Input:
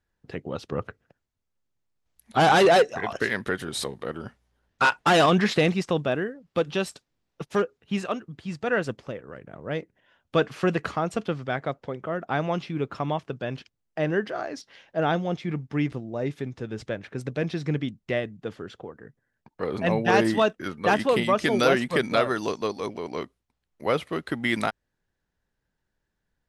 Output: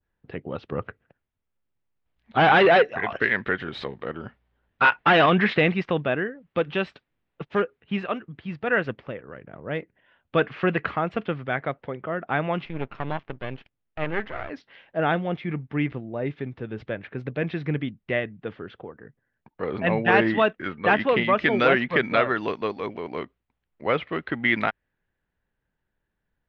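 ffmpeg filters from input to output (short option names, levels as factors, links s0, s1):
-filter_complex "[0:a]asettb=1/sr,asplit=3[s0][s1][s2];[s0]atrim=end=12.654[s3];[s1]atrim=start=12.65:end=14.5,asetpts=PTS-STARTPTS,afade=t=in:d=0.004:c=qsin,afade=t=out:st=1.846:d=0.004:c=qsin,aeval=exprs='max(val(0),0)':c=same[s4];[s2]atrim=start=14.496[s5];[s3][s4]acrossfade=d=0.004:c1=hsin:c2=qsin[s6];[s6][s5]acrossfade=d=0.004:c1=qsin:c2=hsin,lowpass=f=3300:w=0.5412,lowpass=f=3300:w=1.3066,adynamicequalizer=threshold=0.0112:dfrequency=2000:dqfactor=1.2:tfrequency=2000:tqfactor=1.2:attack=5:release=100:ratio=0.375:range=3:mode=boostabove:tftype=bell"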